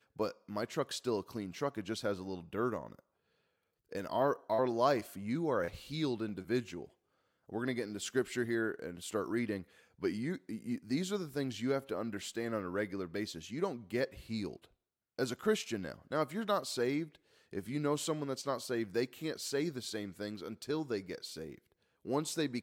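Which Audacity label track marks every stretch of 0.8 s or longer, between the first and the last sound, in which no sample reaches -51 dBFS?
2.990000	3.920000	silence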